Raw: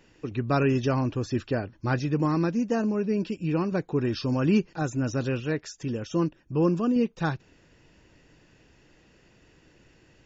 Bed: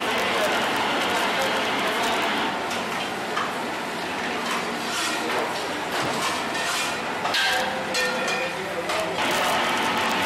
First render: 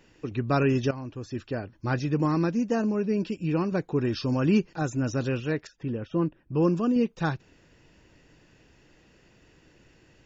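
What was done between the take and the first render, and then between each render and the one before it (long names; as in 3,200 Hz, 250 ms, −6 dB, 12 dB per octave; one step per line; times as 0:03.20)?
0:00.91–0:02.12: fade in, from −13.5 dB
0:05.67–0:06.54: high-frequency loss of the air 350 metres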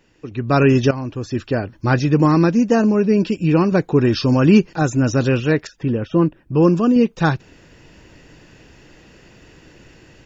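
automatic gain control gain up to 12 dB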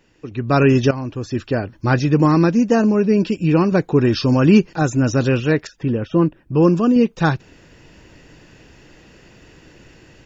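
no processing that can be heard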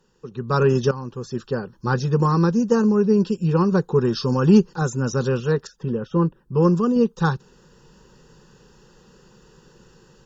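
harmonic generator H 3 −26 dB, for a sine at −2 dBFS
phaser with its sweep stopped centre 440 Hz, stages 8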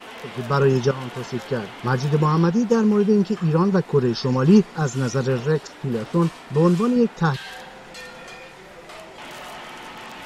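mix in bed −14.5 dB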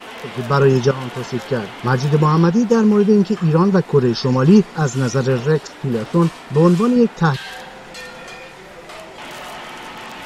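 level +4.5 dB
brickwall limiter −2 dBFS, peak gain reduction 2 dB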